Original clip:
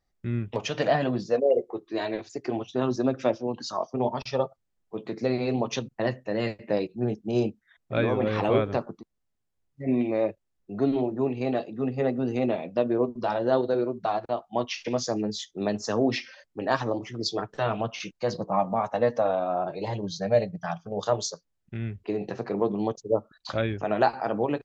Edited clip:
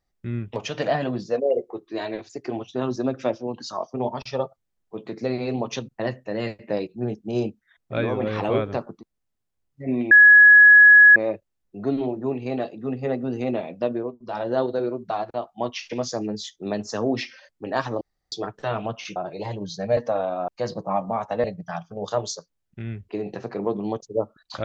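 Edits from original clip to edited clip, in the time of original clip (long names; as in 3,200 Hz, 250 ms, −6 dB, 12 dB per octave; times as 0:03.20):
0:10.11: insert tone 1,680 Hz −7 dBFS 1.05 s
0:12.86–0:13.38: duck −14.5 dB, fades 0.25 s
0:16.96–0:17.27: fill with room tone
0:18.11–0:19.07: swap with 0:19.58–0:20.39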